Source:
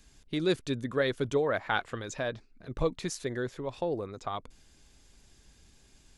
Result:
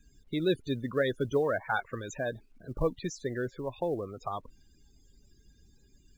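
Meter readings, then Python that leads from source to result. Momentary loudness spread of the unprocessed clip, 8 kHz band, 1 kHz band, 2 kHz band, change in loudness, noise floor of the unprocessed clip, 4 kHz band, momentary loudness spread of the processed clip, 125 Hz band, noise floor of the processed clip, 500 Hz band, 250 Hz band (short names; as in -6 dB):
10 LU, -4.0 dB, -0.5 dB, -1.0 dB, -0.5 dB, -61 dBFS, -4.0 dB, 10 LU, 0.0 dB, -63 dBFS, 0.0 dB, 0.0 dB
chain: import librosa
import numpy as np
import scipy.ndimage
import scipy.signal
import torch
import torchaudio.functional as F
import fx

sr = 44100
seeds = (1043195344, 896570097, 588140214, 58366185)

y = fx.spec_topn(x, sr, count=32)
y = fx.quant_companded(y, sr, bits=8)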